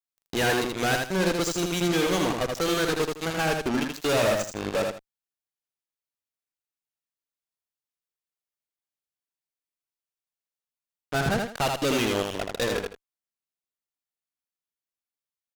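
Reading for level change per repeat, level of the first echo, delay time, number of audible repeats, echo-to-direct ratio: -12.0 dB, -4.0 dB, 80 ms, 2, -3.5 dB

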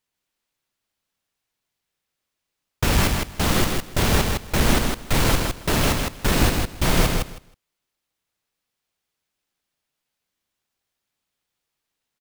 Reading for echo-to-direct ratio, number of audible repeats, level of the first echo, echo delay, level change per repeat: -4.0 dB, 2, -4.0 dB, 159 ms, -16.0 dB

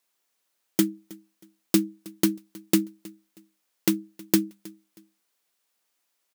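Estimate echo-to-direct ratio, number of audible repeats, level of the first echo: -21.5 dB, 2, -22.0 dB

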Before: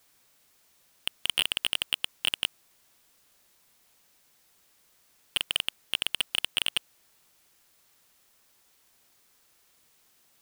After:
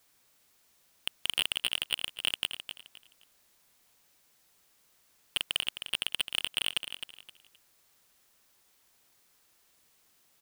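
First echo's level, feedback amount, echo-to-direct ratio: -9.5 dB, 27%, -9.0 dB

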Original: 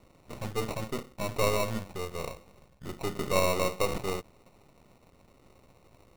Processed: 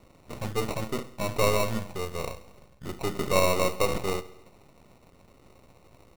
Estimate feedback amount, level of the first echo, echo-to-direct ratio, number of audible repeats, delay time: 59%, -18.0 dB, -16.0 dB, 4, 68 ms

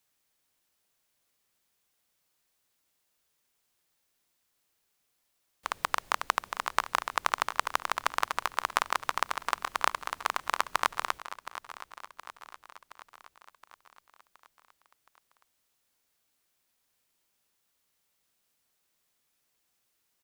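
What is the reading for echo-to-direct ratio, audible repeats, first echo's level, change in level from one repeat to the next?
-12.5 dB, 5, -14.0 dB, -5.0 dB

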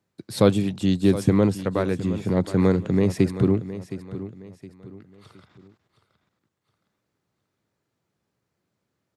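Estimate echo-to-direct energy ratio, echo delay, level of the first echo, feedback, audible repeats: -13.0 dB, 716 ms, -13.5 dB, 35%, 3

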